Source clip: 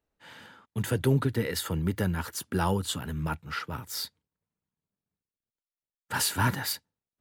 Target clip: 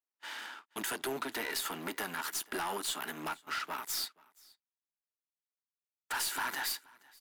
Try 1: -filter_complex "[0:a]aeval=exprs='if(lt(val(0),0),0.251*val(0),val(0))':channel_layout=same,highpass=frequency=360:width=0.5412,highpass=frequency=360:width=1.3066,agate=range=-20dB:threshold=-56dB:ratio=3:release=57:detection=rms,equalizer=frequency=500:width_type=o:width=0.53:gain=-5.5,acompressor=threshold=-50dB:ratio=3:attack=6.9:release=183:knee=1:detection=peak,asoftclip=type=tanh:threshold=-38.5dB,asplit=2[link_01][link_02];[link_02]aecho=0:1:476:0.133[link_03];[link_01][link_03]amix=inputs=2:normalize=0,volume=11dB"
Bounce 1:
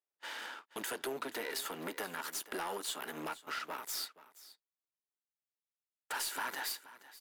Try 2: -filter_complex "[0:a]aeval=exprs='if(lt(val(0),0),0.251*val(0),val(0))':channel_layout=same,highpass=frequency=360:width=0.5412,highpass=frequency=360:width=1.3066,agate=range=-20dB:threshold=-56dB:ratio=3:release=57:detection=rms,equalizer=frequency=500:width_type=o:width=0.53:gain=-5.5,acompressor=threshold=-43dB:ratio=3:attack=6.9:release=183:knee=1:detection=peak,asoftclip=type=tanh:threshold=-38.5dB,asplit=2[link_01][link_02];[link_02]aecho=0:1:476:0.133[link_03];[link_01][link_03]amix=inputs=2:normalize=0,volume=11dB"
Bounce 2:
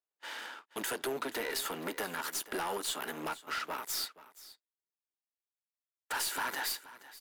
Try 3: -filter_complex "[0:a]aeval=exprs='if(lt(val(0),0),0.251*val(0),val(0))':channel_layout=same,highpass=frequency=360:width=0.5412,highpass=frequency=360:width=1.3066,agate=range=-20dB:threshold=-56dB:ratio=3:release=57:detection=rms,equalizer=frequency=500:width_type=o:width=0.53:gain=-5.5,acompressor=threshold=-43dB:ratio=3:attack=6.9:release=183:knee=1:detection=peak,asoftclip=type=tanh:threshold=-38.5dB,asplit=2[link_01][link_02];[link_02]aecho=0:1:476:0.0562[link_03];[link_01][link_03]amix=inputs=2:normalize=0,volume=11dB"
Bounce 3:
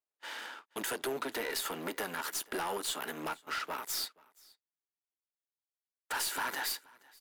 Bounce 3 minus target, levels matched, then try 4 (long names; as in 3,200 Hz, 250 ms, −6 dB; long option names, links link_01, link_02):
500 Hz band +3.0 dB
-filter_complex "[0:a]aeval=exprs='if(lt(val(0),0),0.251*val(0),val(0))':channel_layout=same,highpass=frequency=360:width=0.5412,highpass=frequency=360:width=1.3066,agate=range=-20dB:threshold=-56dB:ratio=3:release=57:detection=rms,equalizer=frequency=500:width_type=o:width=0.53:gain=-14.5,acompressor=threshold=-43dB:ratio=3:attack=6.9:release=183:knee=1:detection=peak,asoftclip=type=tanh:threshold=-38.5dB,asplit=2[link_01][link_02];[link_02]aecho=0:1:476:0.0562[link_03];[link_01][link_03]amix=inputs=2:normalize=0,volume=11dB"